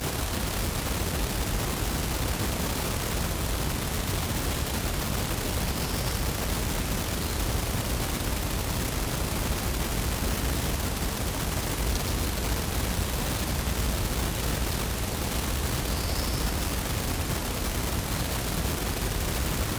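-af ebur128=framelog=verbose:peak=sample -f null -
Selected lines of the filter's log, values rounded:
Integrated loudness:
  I:         -28.8 LUFS
  Threshold: -38.8 LUFS
Loudness range:
  LRA:         0.3 LU
  Threshold: -48.8 LUFS
  LRA low:   -28.9 LUFS
  LRA high:  -28.6 LUFS
Sample peak:
  Peak:      -14.6 dBFS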